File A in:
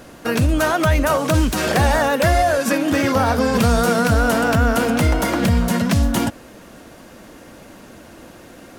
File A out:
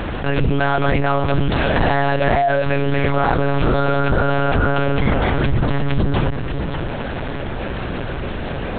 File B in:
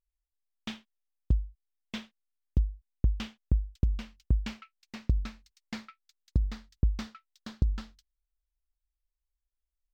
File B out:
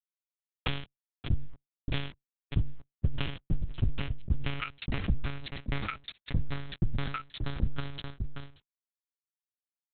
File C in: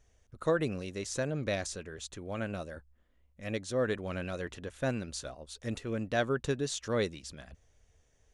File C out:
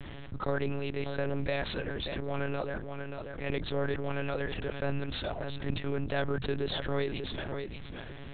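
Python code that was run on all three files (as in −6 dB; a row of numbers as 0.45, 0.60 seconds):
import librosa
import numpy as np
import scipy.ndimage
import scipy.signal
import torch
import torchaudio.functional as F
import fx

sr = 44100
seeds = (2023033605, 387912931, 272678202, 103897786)

y = fx.law_mismatch(x, sr, coded='A')
y = fx.peak_eq(y, sr, hz=120.0, db=9.5, octaves=0.22)
y = y + 10.0 ** (-21.0 / 20.0) * np.pad(y, (int(586 * sr / 1000.0), 0))[:len(y)]
y = fx.lpc_monotone(y, sr, seeds[0], pitch_hz=140.0, order=8)
y = fx.env_flatten(y, sr, amount_pct=70)
y = y * 10.0 ** (-3.5 / 20.0)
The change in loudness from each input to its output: −2.0, −2.0, 0.0 LU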